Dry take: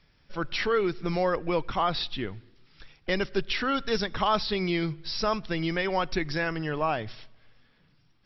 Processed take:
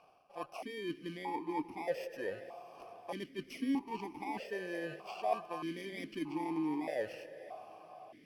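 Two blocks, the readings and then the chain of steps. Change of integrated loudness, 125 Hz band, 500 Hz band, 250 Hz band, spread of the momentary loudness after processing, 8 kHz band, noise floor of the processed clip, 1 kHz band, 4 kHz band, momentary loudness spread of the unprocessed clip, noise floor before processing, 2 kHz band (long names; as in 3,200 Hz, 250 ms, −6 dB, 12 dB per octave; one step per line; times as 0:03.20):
−11.5 dB, −18.5 dB, −11.0 dB, −7.0 dB, 14 LU, can't be measured, −60 dBFS, −10.5 dB, −18.5 dB, 8 LU, −64 dBFS, −14.0 dB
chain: samples in bit-reversed order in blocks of 32 samples
parametric band 830 Hz +8.5 dB 2.5 octaves
reversed playback
downward compressor 6 to 1, threshold −38 dBFS, peak gain reduction 19.5 dB
reversed playback
feedback delay with all-pass diffusion 598 ms, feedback 58%, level −15 dB
formant filter that steps through the vowels 1.6 Hz
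level +14.5 dB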